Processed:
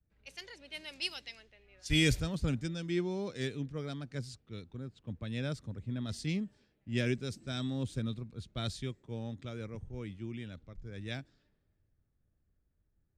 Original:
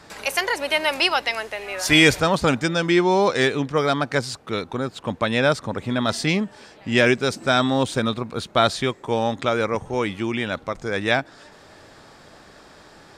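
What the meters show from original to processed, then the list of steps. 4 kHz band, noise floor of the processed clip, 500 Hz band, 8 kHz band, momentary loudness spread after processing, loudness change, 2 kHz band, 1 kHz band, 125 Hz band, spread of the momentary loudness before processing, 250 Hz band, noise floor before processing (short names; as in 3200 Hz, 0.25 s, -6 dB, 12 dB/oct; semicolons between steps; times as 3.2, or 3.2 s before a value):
-15.5 dB, -77 dBFS, -20.0 dB, -15.5 dB, 14 LU, -15.5 dB, -20.0 dB, -28.0 dB, -8.0 dB, 10 LU, -13.5 dB, -49 dBFS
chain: passive tone stack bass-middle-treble 10-0-1; low-pass opened by the level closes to 1700 Hz, open at -39.5 dBFS; three-band expander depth 70%; gain +4 dB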